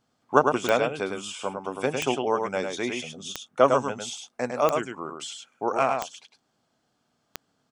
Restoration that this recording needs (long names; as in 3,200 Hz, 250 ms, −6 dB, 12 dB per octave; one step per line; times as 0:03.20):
click removal
echo removal 104 ms −5 dB